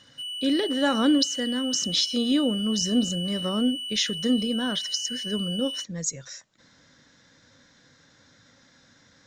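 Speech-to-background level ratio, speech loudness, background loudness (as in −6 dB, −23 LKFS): 5.5 dB, −26.0 LKFS, −31.5 LKFS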